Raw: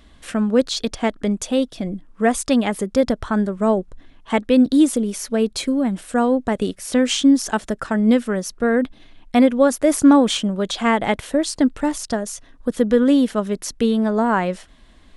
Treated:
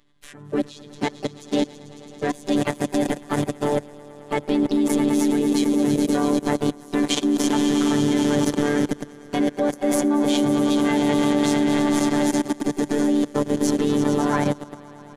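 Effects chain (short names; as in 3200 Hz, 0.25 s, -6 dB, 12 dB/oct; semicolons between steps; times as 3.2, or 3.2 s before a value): on a send: swelling echo 0.11 s, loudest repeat 5, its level -10 dB; on the sum: robotiser 146 Hz; level quantiser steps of 22 dB; ripple EQ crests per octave 1.1, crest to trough 6 dB; harmoniser -5 st -10 dB, +5 st -11 dB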